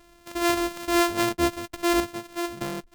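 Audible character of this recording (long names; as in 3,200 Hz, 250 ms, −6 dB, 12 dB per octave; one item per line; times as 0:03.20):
a buzz of ramps at a fixed pitch in blocks of 128 samples
sample-and-hold tremolo 3.5 Hz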